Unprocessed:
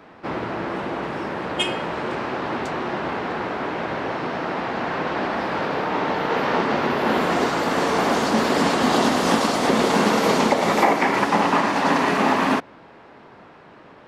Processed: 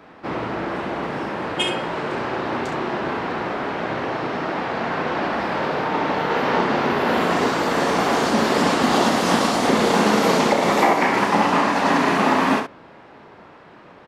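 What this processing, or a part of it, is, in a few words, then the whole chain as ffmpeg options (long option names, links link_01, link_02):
slapback doubling: -filter_complex "[0:a]asplit=3[link_01][link_02][link_03];[link_02]adelay=34,volume=-8.5dB[link_04];[link_03]adelay=66,volume=-7.5dB[link_05];[link_01][link_04][link_05]amix=inputs=3:normalize=0"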